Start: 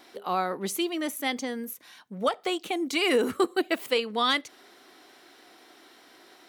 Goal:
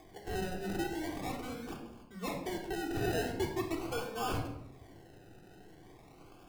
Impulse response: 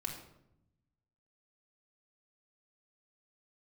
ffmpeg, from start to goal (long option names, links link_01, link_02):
-filter_complex "[0:a]aexciter=amount=1.4:drive=5.6:freq=5500,acrusher=samples=31:mix=1:aa=0.000001:lfo=1:lforange=18.6:lforate=0.42,asoftclip=type=tanh:threshold=-19dB,acompressor=mode=upward:threshold=-42dB:ratio=2.5[link_01];[1:a]atrim=start_sample=2205[link_02];[link_01][link_02]afir=irnorm=-1:irlink=0,volume=-8.5dB"